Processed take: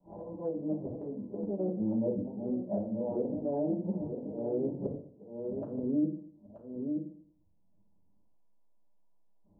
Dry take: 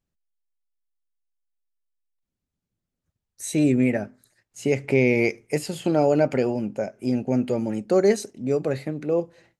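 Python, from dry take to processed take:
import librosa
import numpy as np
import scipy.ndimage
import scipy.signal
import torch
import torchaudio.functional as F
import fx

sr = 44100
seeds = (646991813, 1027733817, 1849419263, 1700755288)

p1 = x[::-1].copy()
p2 = scipy.signal.sosfilt(scipy.signal.cheby1(6, 1.0, 1000.0, 'lowpass', fs=sr, output='sos'), p1)
p3 = fx.hum_notches(p2, sr, base_hz=60, count=3)
p4 = fx.auto_swell(p3, sr, attack_ms=728.0)
p5 = fx.env_lowpass_down(p4, sr, base_hz=500.0, full_db=-26.5)
p6 = p5 + fx.echo_single(p5, sr, ms=929, db=-11.5, dry=0)
p7 = fx.rev_fdn(p6, sr, rt60_s=0.46, lf_ratio=1.1, hf_ratio=0.55, size_ms=30.0, drr_db=-4.0)
p8 = fx.band_squash(p7, sr, depth_pct=70)
y = p8 * 10.0 ** (-6.5 / 20.0)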